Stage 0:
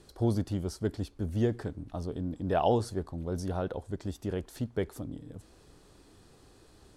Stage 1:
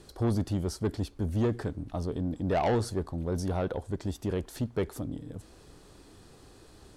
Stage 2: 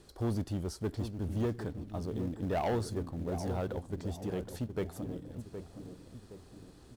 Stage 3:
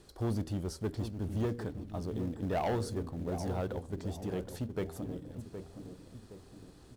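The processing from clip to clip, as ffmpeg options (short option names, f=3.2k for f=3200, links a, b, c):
-af "asoftclip=type=tanh:threshold=-25.5dB,volume=4dB"
-filter_complex "[0:a]asplit=2[a][b];[b]adelay=767,lowpass=f=860:p=1,volume=-8dB,asplit=2[c][d];[d]adelay=767,lowpass=f=860:p=1,volume=0.49,asplit=2[e][f];[f]adelay=767,lowpass=f=860:p=1,volume=0.49,asplit=2[g][h];[h]adelay=767,lowpass=f=860:p=1,volume=0.49,asplit=2[i][j];[j]adelay=767,lowpass=f=860:p=1,volume=0.49,asplit=2[k][l];[l]adelay=767,lowpass=f=860:p=1,volume=0.49[m];[a][c][e][g][i][k][m]amix=inputs=7:normalize=0,asplit=2[n][o];[o]acrusher=bits=3:mode=log:mix=0:aa=0.000001,volume=-10.5dB[p];[n][p]amix=inputs=2:normalize=0,volume=-7.5dB"
-af "bandreject=f=79.49:t=h:w=4,bandreject=f=158.98:t=h:w=4,bandreject=f=238.47:t=h:w=4,bandreject=f=317.96:t=h:w=4,bandreject=f=397.45:t=h:w=4,bandreject=f=476.94:t=h:w=4,bandreject=f=556.43:t=h:w=4"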